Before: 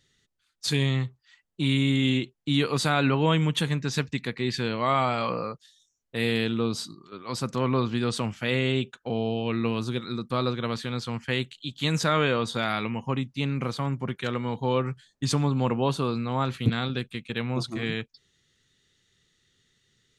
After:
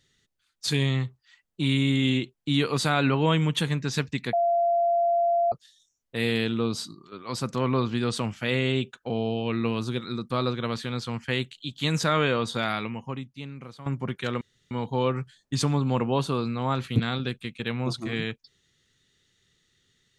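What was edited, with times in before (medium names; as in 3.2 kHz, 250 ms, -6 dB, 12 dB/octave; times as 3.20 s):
4.33–5.52 s: bleep 687 Hz -19.5 dBFS
12.67–13.86 s: fade out quadratic, to -14 dB
14.41 s: insert room tone 0.30 s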